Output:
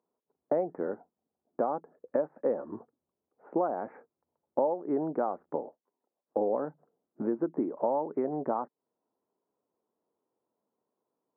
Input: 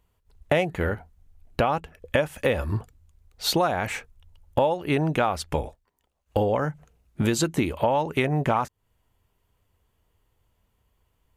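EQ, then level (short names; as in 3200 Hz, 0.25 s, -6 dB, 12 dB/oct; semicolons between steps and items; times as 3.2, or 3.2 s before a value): Gaussian blur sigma 8.5 samples; HPF 250 Hz 24 dB/oct; air absorption 160 m; -2.5 dB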